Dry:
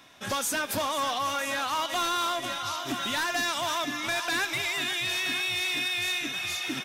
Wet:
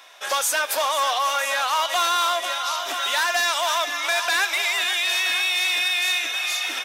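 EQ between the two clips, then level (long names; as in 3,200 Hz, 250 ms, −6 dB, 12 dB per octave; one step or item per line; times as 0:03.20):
high-pass filter 510 Hz 24 dB per octave
+7.0 dB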